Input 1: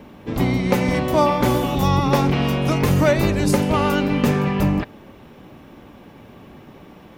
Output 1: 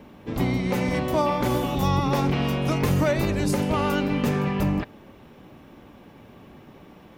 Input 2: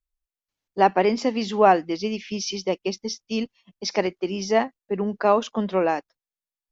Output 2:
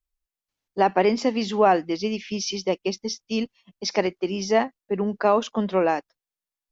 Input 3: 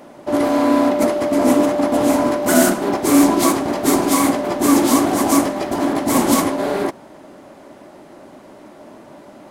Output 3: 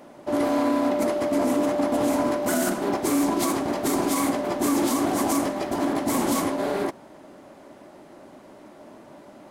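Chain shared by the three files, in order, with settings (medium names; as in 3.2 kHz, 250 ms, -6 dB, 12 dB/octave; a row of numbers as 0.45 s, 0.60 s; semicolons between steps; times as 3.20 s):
peak limiter -8.5 dBFS; normalise loudness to -24 LUFS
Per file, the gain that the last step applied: -4.5 dB, +0.5 dB, -5.5 dB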